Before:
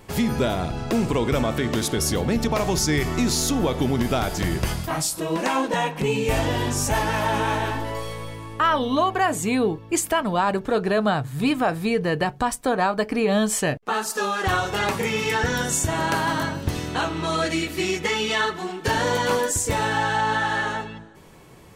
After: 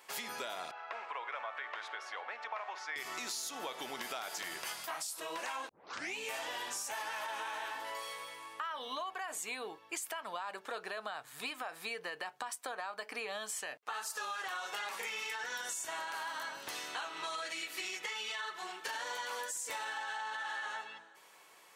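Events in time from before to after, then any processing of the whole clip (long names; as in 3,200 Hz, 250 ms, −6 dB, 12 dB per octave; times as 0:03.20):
0:00.71–0:02.96: flat-topped band-pass 1,200 Hz, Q 0.76
0:05.69: tape start 0.48 s
whole clip: high-pass filter 920 Hz 12 dB per octave; brickwall limiter −19 dBFS; downward compressor, threshold −32 dBFS; level −5 dB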